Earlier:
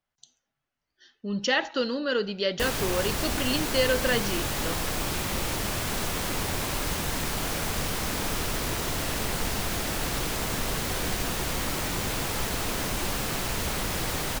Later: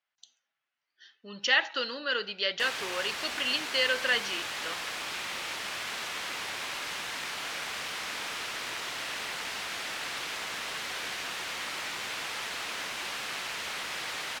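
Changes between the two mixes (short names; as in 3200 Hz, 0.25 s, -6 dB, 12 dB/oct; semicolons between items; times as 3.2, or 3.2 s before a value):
speech +3.0 dB; master: add band-pass 2400 Hz, Q 0.79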